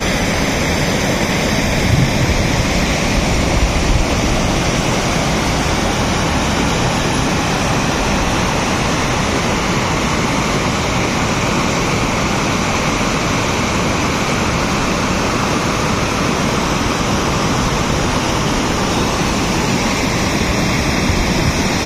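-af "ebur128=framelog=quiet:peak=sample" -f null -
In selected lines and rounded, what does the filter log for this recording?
Integrated loudness:
  I:         -15.6 LUFS
  Threshold: -25.6 LUFS
Loudness range:
  LRA:         0.8 LU
  Threshold: -35.7 LUFS
  LRA low:   -15.9 LUFS
  LRA high:  -15.1 LUFS
Sample peak:
  Peak:       -1.2 dBFS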